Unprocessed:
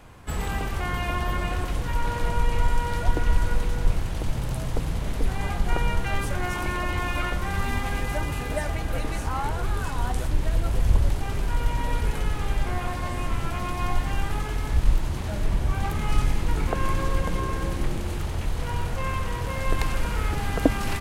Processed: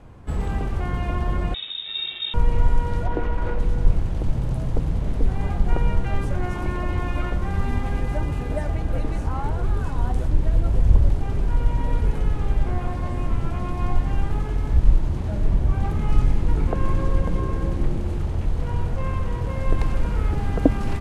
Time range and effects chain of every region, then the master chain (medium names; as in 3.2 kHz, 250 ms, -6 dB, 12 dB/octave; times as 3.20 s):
1.54–2.34 s: median filter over 15 samples + frequency inversion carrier 3.7 kHz
3.06–3.59 s: tone controls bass -10 dB, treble -13 dB + doubling 19 ms -11.5 dB + level flattener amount 70%
whole clip: Bessel low-pass 9.5 kHz, order 2; tilt shelf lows +6.5 dB, about 890 Hz; trim -2 dB